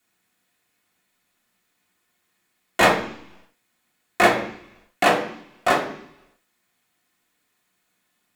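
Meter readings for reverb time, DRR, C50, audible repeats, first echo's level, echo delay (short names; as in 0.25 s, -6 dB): 0.70 s, -5.5 dB, 8.0 dB, none, none, none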